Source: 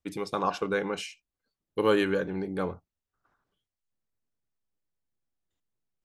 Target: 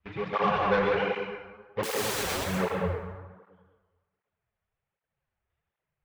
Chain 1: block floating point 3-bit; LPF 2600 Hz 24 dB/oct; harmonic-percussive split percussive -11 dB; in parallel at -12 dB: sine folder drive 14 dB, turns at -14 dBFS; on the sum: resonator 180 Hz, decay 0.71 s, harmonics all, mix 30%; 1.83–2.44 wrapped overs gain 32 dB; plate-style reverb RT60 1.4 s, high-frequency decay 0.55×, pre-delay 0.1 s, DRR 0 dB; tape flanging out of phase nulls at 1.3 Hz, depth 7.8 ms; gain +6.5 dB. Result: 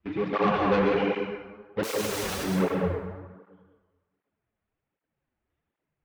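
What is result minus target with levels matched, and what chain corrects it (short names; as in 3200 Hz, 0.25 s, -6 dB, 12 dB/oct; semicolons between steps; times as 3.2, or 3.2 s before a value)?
250 Hz band +5.0 dB
block floating point 3-bit; LPF 2600 Hz 24 dB/oct; bell 280 Hz -13.5 dB 1 oct; harmonic-percussive split percussive -11 dB; in parallel at -12 dB: sine folder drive 14 dB, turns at -14 dBFS; on the sum: resonator 180 Hz, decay 0.71 s, harmonics all, mix 30%; 1.83–2.44 wrapped overs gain 32 dB; plate-style reverb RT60 1.4 s, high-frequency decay 0.55×, pre-delay 0.1 s, DRR 0 dB; tape flanging out of phase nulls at 1.3 Hz, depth 7.8 ms; gain +6.5 dB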